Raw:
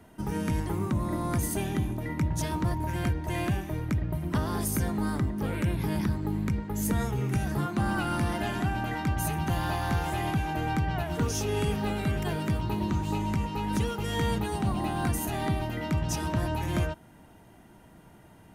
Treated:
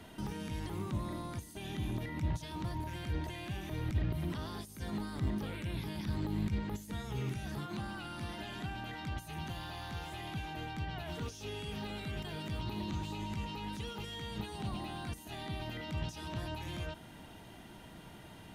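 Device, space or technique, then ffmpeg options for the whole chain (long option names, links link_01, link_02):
de-esser from a sidechain: -filter_complex "[0:a]asplit=2[link_01][link_02];[link_02]highpass=frequency=5000:poles=1,apad=whole_len=817672[link_03];[link_01][link_03]sidechaincompress=threshold=-57dB:ratio=12:attack=2.7:release=32,equalizer=frequency=3600:width_type=o:width=1.2:gain=10.5,volume=1dB"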